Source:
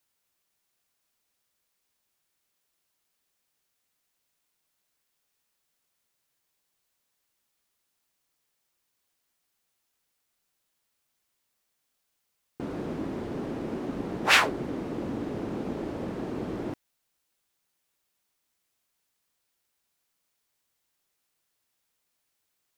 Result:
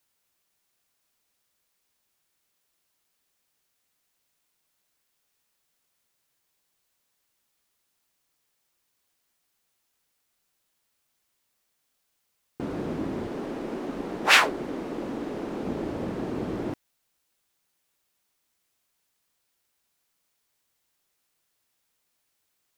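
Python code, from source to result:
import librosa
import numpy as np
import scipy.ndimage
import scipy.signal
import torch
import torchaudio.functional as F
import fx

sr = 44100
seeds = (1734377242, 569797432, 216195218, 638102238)

y = fx.peak_eq(x, sr, hz=96.0, db=-12.0, octaves=1.7, at=(13.27, 15.63))
y = F.gain(torch.from_numpy(y), 2.5).numpy()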